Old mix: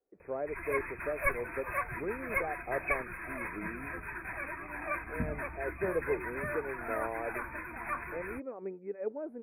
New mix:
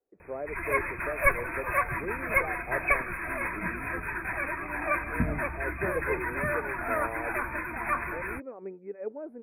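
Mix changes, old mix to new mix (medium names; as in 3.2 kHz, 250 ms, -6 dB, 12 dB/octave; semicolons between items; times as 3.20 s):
background +4.0 dB; reverb: on, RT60 0.65 s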